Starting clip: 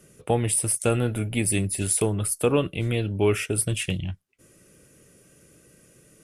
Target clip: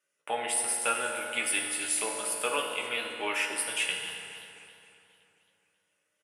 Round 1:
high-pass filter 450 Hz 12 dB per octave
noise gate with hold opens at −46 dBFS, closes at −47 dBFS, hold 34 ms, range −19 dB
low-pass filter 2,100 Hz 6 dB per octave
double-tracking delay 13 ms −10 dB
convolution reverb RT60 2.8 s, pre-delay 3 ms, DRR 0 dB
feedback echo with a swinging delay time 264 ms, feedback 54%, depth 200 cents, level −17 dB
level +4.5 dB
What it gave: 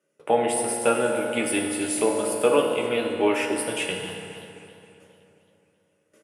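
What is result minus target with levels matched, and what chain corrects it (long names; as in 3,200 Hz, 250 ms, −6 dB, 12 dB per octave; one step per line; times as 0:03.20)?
500 Hz band +9.0 dB
high-pass filter 1,300 Hz 12 dB per octave
noise gate with hold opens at −46 dBFS, closes at −47 dBFS, hold 34 ms, range −19 dB
low-pass filter 2,100 Hz 6 dB per octave
double-tracking delay 13 ms −10 dB
convolution reverb RT60 2.8 s, pre-delay 3 ms, DRR 0 dB
feedback echo with a swinging delay time 264 ms, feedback 54%, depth 200 cents, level −17 dB
level +4.5 dB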